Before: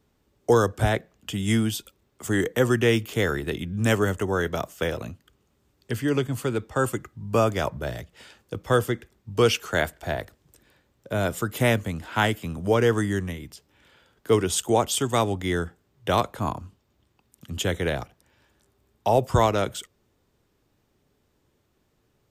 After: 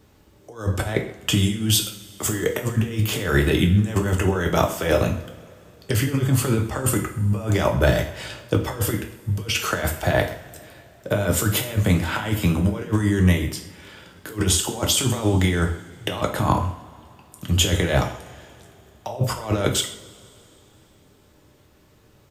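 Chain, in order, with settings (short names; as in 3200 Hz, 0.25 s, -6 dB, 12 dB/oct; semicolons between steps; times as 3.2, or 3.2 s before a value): negative-ratio compressor -28 dBFS, ratio -0.5; speakerphone echo 0.13 s, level -17 dB; two-slope reverb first 0.43 s, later 3.1 s, from -22 dB, DRR 2.5 dB; gain +6 dB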